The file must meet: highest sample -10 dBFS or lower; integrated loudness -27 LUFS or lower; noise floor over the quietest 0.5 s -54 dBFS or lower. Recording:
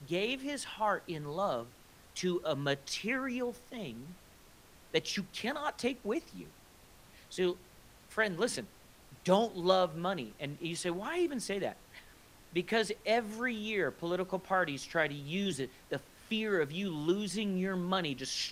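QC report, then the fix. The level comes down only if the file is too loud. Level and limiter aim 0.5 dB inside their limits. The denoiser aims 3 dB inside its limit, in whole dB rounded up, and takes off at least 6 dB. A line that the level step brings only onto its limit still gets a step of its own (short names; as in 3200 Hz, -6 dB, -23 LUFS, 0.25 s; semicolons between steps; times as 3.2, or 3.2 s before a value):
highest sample -12.5 dBFS: OK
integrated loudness -34.5 LUFS: OK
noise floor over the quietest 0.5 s -59 dBFS: OK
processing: none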